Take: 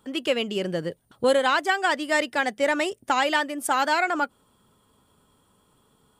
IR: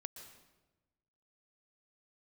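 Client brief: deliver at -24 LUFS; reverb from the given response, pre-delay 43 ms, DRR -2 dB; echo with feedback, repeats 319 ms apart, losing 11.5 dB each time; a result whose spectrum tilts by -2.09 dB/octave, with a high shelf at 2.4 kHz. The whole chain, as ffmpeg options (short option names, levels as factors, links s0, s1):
-filter_complex "[0:a]highshelf=f=2400:g=-7,aecho=1:1:319|638|957:0.266|0.0718|0.0194,asplit=2[s0][s1];[1:a]atrim=start_sample=2205,adelay=43[s2];[s1][s2]afir=irnorm=-1:irlink=0,volume=2[s3];[s0][s3]amix=inputs=2:normalize=0,volume=0.708"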